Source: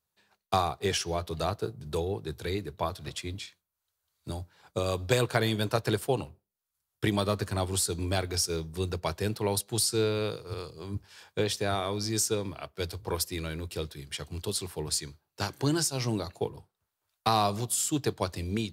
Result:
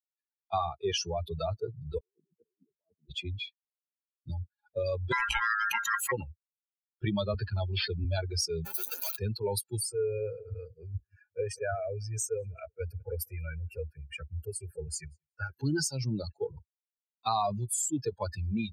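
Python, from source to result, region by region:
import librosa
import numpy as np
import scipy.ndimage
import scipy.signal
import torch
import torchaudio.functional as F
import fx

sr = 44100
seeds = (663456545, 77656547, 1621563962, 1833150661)

y = fx.chain(x, sr, fx.ladder_bandpass(hz=350.0, resonance_pct=20),
    fx.over_compress(threshold_db=-56.0, ratio=-1.0), at=(1.98, 3.1))
y = fx.chain(y, sr, fx.ring_mod(carrier_hz=1500.0),
    fx.doubler(ms=18.0, db=-9),
    fx.pre_swell(db_per_s=65.0), at=(5.12, 6.12))
y = fx.chain(y, sr, fx.high_shelf(hz=12000.0, db=-10.5),
    fx.resample_bad(factor=4, down='none', up='filtered'),
    fx.band_squash(depth_pct=40), at=(7.34, 8.05))
y = fx.chain(y, sr, fx.clip_1bit(),
    fx.highpass(hz=410.0, slope=12),
    fx.high_shelf(hz=5300.0, db=12.0), at=(8.65, 9.16))
y = fx.chain(y, sr, fx.high_shelf(hz=8700.0, db=-5.5),
    fx.fixed_phaser(hz=1000.0, stages=6),
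    fx.echo_feedback(ms=187, feedback_pct=31, wet_db=-19), at=(9.77, 15.58))
y = fx.bin_expand(y, sr, power=3.0)
y = fx.high_shelf(y, sr, hz=5500.0, db=-8.5)
y = fx.env_flatten(y, sr, amount_pct=70)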